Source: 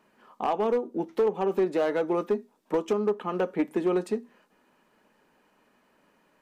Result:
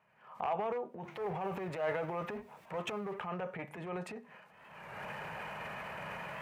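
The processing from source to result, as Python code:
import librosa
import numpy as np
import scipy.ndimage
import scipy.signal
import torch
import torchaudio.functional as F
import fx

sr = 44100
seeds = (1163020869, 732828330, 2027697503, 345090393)

y = fx.law_mismatch(x, sr, coded='mu', at=(1.04, 3.26), fade=0.02)
y = fx.recorder_agc(y, sr, target_db=-22.5, rise_db_per_s=37.0, max_gain_db=30)
y = fx.curve_eq(y, sr, hz=(150.0, 270.0, 660.0, 2100.0, 3900.0), db=(0, -25, -5, -11, -18))
y = fx.transient(y, sr, attack_db=-8, sustain_db=7)
y = scipy.signal.sosfilt(scipy.signal.butter(2, 75.0, 'highpass', fs=sr, output='sos'), y)
y = fx.peak_eq(y, sr, hz=2400.0, db=8.5, octaves=0.94)
y = fx.record_warp(y, sr, rpm=33.33, depth_cents=100.0)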